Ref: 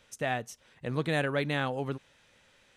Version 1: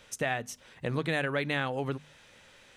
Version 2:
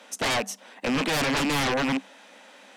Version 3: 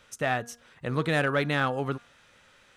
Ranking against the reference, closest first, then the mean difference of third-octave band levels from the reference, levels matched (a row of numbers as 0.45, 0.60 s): 3, 1, 2; 1.5, 3.5, 9.0 dB